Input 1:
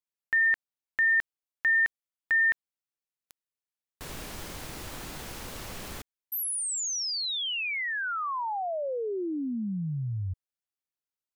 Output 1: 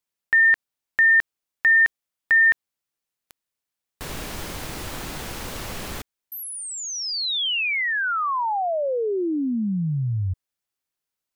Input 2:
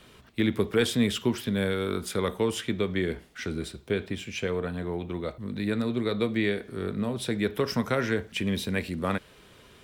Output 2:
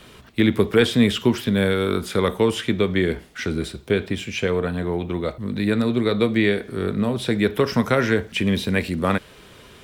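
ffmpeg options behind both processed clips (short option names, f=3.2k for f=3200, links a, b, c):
-filter_complex "[0:a]acrossover=split=4300[a][b];[b]acompressor=threshold=-42dB:ratio=4:attack=1:release=60[c];[a][c]amix=inputs=2:normalize=0,volume=7.5dB"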